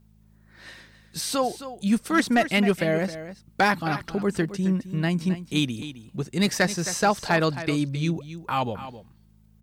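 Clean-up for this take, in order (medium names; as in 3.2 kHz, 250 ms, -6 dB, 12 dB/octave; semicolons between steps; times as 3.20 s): clip repair -12.5 dBFS; de-hum 53.4 Hz, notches 4; inverse comb 265 ms -13 dB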